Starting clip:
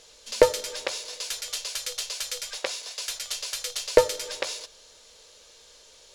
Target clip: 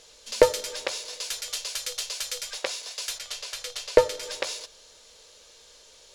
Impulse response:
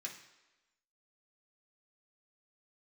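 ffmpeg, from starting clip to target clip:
-filter_complex "[0:a]asettb=1/sr,asplit=3[s0][s1][s2];[s0]atrim=end=3.184[s3];[s1]atrim=start=3.18:end=4.23,asetpts=PTS-STARTPTS,afade=t=in:d=0.004:c=qsin,afade=t=out:st=1.046:d=0.004:c=qsin,highshelf=f=5700:g=-8.5[s4];[s2]atrim=start=4.226[s5];[s3][s4]acrossfade=d=0.004:c1=hsin:c2=qsin[s6];[s6][s5]acrossfade=d=0.004:c1=qsin:c2=hsin"

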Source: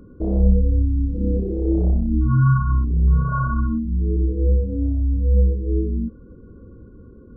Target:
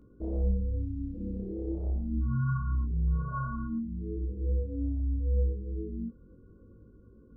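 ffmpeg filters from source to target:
-af "flanger=delay=17.5:depth=4.1:speed=0.4,volume=0.355"

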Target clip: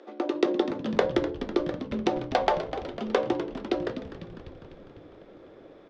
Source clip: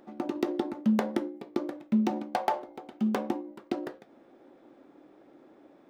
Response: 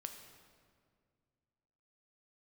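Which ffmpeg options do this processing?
-filter_complex "[0:a]highpass=f=330:w=0.5412,highpass=f=330:w=1.3066,equalizer=f=470:t=q:w=4:g=6,equalizer=f=840:t=q:w=4:g=-6,equalizer=f=3500:t=q:w=4:g=4,lowpass=f=6100:w=0.5412,lowpass=f=6100:w=1.3066,asplit=9[s0][s1][s2][s3][s4][s5][s6][s7][s8];[s1]adelay=250,afreqshift=-91,volume=0.282[s9];[s2]adelay=500,afreqshift=-182,volume=0.178[s10];[s3]adelay=750,afreqshift=-273,volume=0.112[s11];[s4]adelay=1000,afreqshift=-364,volume=0.0708[s12];[s5]adelay=1250,afreqshift=-455,volume=0.0442[s13];[s6]adelay=1500,afreqshift=-546,volume=0.0279[s14];[s7]adelay=1750,afreqshift=-637,volume=0.0176[s15];[s8]adelay=2000,afreqshift=-728,volume=0.0111[s16];[s0][s9][s10][s11][s12][s13][s14][s15][s16]amix=inputs=9:normalize=0,volume=2.11"

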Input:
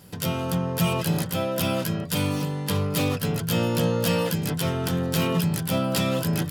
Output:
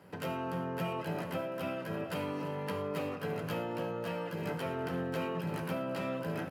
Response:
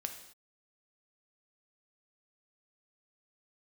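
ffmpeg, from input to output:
-filter_complex "[0:a]highpass=78,acrossover=split=330 2600:gain=0.126 1 0.112[s0][s1][s2];[s0][s1][s2]amix=inputs=3:normalize=0,bandreject=f=3500:w=10,aecho=1:1:335|670|1005|1340:0.188|0.0885|0.0416|0.0196,acompressor=threshold=0.02:ratio=6,lowshelf=f=250:g=9[s3];[1:a]atrim=start_sample=2205,afade=t=out:st=0.17:d=0.01,atrim=end_sample=7938[s4];[s3][s4]afir=irnorm=-1:irlink=0"

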